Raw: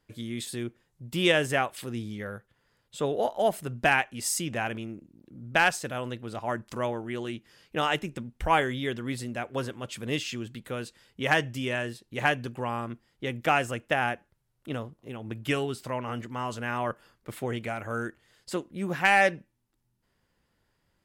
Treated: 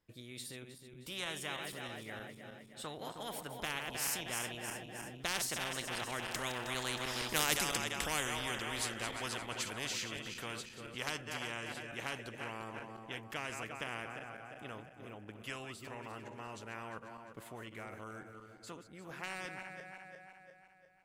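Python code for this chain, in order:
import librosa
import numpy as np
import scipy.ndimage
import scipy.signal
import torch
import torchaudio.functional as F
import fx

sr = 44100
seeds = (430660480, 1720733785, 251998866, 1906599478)

y = fx.reverse_delay_fb(x, sr, ms=166, feedback_pct=69, wet_db=-11.0)
y = fx.doppler_pass(y, sr, speed_mps=19, closest_m=3.8, pass_at_s=7.43)
y = fx.spectral_comp(y, sr, ratio=4.0)
y = y * librosa.db_to_amplitude(-1.5)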